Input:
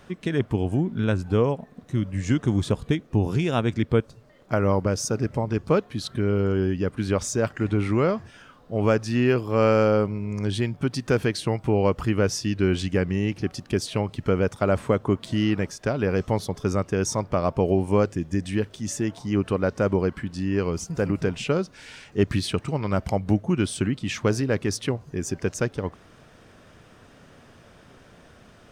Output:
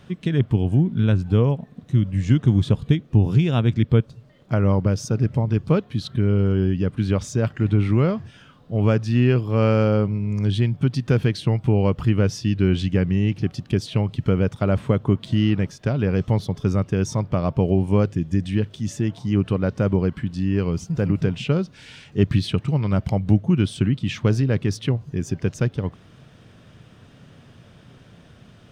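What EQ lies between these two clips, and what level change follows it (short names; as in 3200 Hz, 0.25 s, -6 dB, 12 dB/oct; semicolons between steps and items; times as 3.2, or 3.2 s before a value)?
bell 130 Hz +12 dB 1.8 oct; dynamic EQ 9100 Hz, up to -5 dB, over -47 dBFS, Q 0.7; bell 3300 Hz +6.5 dB 0.93 oct; -3.5 dB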